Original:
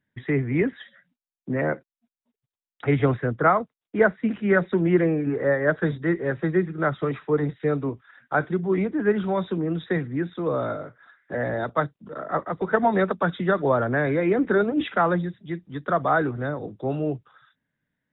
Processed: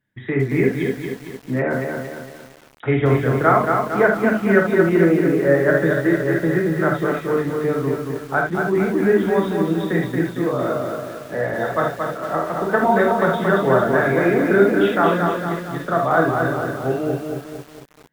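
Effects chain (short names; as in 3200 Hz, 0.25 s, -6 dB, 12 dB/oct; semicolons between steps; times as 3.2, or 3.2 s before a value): non-linear reverb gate 0.1 s flat, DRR 0.5 dB; lo-fi delay 0.227 s, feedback 55%, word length 7-bit, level -4 dB; gain +1 dB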